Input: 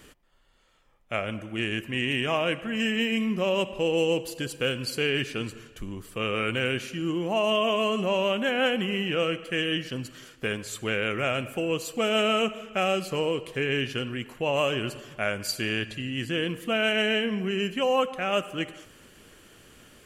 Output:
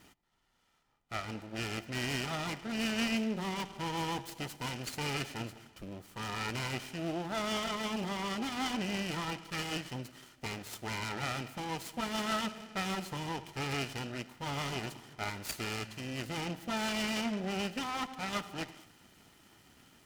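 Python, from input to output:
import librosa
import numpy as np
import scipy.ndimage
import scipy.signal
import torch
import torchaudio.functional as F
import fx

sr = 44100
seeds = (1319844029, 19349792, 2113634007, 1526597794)

y = fx.lower_of_two(x, sr, delay_ms=0.93)
y = fx.notch_comb(y, sr, f0_hz=1100.0)
y = fx.noise_mod_delay(y, sr, seeds[0], noise_hz=2200.0, depth_ms=0.032)
y = y * librosa.db_to_amplitude(-4.0)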